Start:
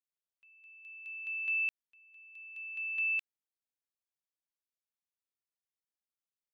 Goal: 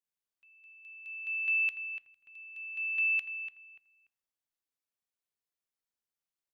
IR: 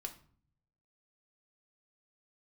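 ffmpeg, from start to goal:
-filter_complex "[0:a]adynamicequalizer=threshold=0.00631:dfrequency=2000:dqfactor=0.79:tfrequency=2000:tqfactor=0.79:attack=5:release=100:ratio=0.375:range=2:mode=boostabove:tftype=bell,asplit=2[s0][s1];[s1]adelay=291,lowpass=f=2100:p=1,volume=0.447,asplit=2[s2][s3];[s3]adelay=291,lowpass=f=2100:p=1,volume=0.28,asplit=2[s4][s5];[s5]adelay=291,lowpass=f=2100:p=1,volume=0.28[s6];[s0][s2][s4][s6]amix=inputs=4:normalize=0,asplit=2[s7][s8];[1:a]atrim=start_sample=2205[s9];[s8][s9]afir=irnorm=-1:irlink=0,volume=0.473[s10];[s7][s10]amix=inputs=2:normalize=0,volume=0.75"

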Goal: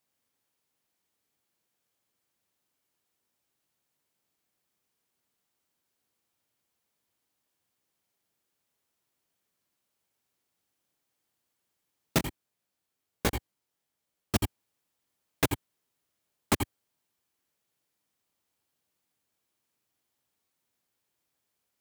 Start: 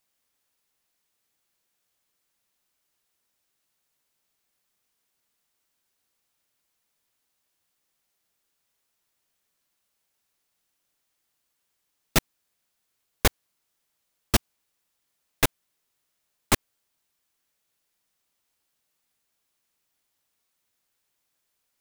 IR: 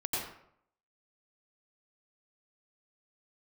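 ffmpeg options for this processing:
-filter_complex "[0:a]highpass=87,tiltshelf=f=740:g=3.5[s0];[1:a]atrim=start_sample=2205,afade=t=out:st=0.13:d=0.01,atrim=end_sample=6174[s1];[s0][s1]afir=irnorm=-1:irlink=0,asplit=3[s2][s3][s4];[s2]afade=t=out:st=12.18:d=0.02[s5];[s3]flanger=delay=16.5:depth=6.7:speed=1.2,afade=t=in:st=12.18:d=0.02,afade=t=out:st=14.35:d=0.02[s6];[s4]afade=t=in:st=14.35:d=0.02[s7];[s5][s6][s7]amix=inputs=3:normalize=0,acompressor=threshold=0.1:ratio=6"

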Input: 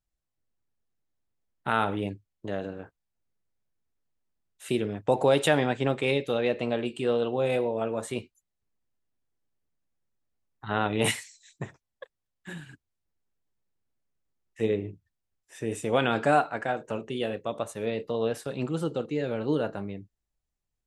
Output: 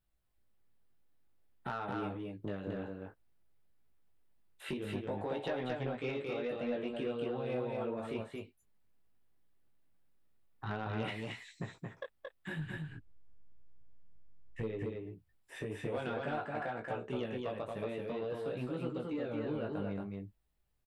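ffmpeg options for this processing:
-filter_complex "[0:a]asplit=3[s0][s1][s2];[s0]afade=t=out:st=12.57:d=0.02[s3];[s1]aemphasis=mode=reproduction:type=bsi,afade=t=in:st=12.57:d=0.02,afade=t=out:st=14.61:d=0.02[s4];[s2]afade=t=in:st=14.61:d=0.02[s5];[s3][s4][s5]amix=inputs=3:normalize=0,acrossover=split=4200[s6][s7];[s7]acompressor=threshold=0.00126:ratio=4:attack=1:release=60[s8];[s6][s8]amix=inputs=2:normalize=0,equalizer=f=6400:w=1.6:g=-10,acompressor=threshold=0.00891:ratio=4,flanger=delay=16:depth=4.7:speed=0.53,asoftclip=type=tanh:threshold=0.0158,asplit=2[s9][s10];[s10]aecho=0:1:225:0.708[s11];[s9][s11]amix=inputs=2:normalize=0,volume=2.24"

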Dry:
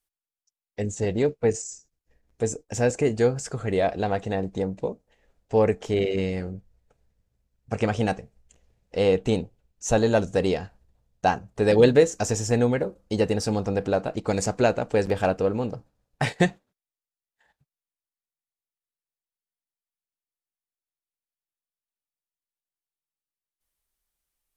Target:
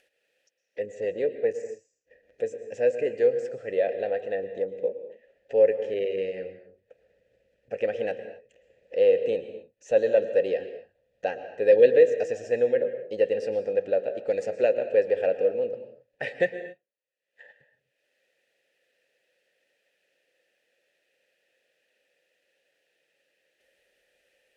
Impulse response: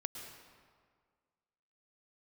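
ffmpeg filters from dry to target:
-filter_complex "[0:a]acompressor=mode=upward:threshold=0.0251:ratio=2.5,asplit=3[s0][s1][s2];[s0]bandpass=f=530:t=q:w=8,volume=1[s3];[s1]bandpass=f=1840:t=q:w=8,volume=0.501[s4];[s2]bandpass=f=2480:t=q:w=8,volume=0.355[s5];[s3][s4][s5]amix=inputs=3:normalize=0,asplit=2[s6][s7];[1:a]atrim=start_sample=2205,afade=t=out:st=0.32:d=0.01,atrim=end_sample=14553,asetrate=42777,aresample=44100[s8];[s7][s8]afir=irnorm=-1:irlink=0,volume=1.26[s9];[s6][s9]amix=inputs=2:normalize=0"

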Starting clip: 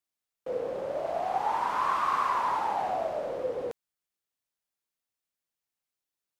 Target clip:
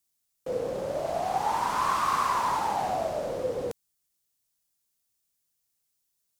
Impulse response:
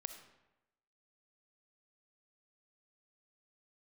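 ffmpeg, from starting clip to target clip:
-af "bass=f=250:g=9,treble=f=4000:g=12,volume=1.12"

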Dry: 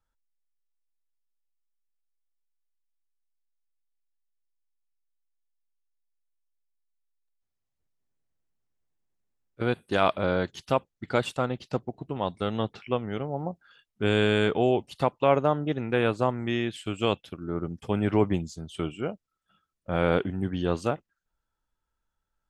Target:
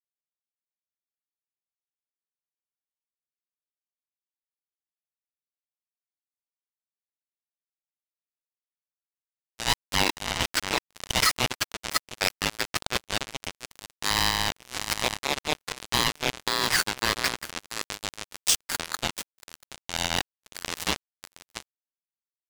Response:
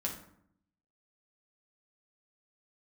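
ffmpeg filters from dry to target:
-af "areverse,acompressor=threshold=0.0251:ratio=16,areverse,aecho=1:1:684:0.355,asoftclip=type=tanh:threshold=0.0282,highpass=1400,highshelf=f=2300:g=5,acompressor=mode=upward:threshold=0.00355:ratio=2.5,aeval=exprs='val(0)*sin(2*PI*1500*n/s)':c=same,acrusher=bits=6:mix=0:aa=0.5,alimiter=level_in=56.2:limit=0.891:release=50:level=0:latency=1,adynamicequalizer=threshold=0.0355:dfrequency=3500:dqfactor=0.7:tfrequency=3500:tqfactor=0.7:attack=5:release=100:ratio=0.375:range=3:mode=cutabove:tftype=highshelf,volume=0.447"

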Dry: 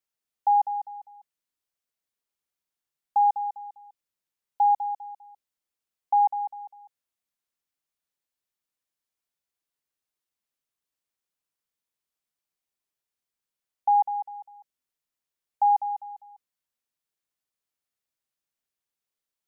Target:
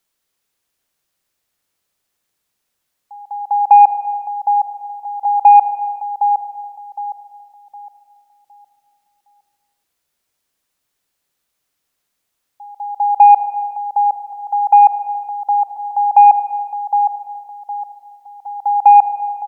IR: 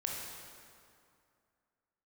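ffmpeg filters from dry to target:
-filter_complex "[0:a]areverse,asplit=2[s0][s1];[s1]adelay=762,lowpass=f=960:p=1,volume=0.501,asplit=2[s2][s3];[s3]adelay=762,lowpass=f=960:p=1,volume=0.39,asplit=2[s4][s5];[s5]adelay=762,lowpass=f=960:p=1,volume=0.39,asplit=2[s6][s7];[s7]adelay=762,lowpass=f=960:p=1,volume=0.39,asplit=2[s8][s9];[s9]adelay=762,lowpass=f=960:p=1,volume=0.39[s10];[s0][s2][s4][s6][s8][s10]amix=inputs=6:normalize=0,acontrast=82,asplit=2[s11][s12];[1:a]atrim=start_sample=2205,afade=t=out:st=0.34:d=0.01,atrim=end_sample=15435,asetrate=29988,aresample=44100[s13];[s12][s13]afir=irnorm=-1:irlink=0,volume=0.282[s14];[s11][s14]amix=inputs=2:normalize=0,volume=1.88"

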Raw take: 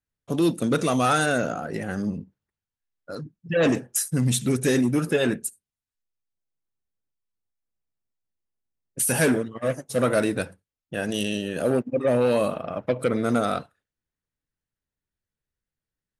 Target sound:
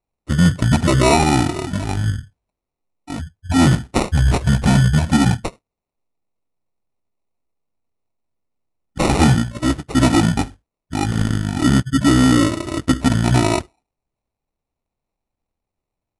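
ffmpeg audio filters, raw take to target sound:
-af "acrusher=samples=14:mix=1:aa=0.000001,asetrate=22696,aresample=44100,atempo=1.94306,volume=2.51"

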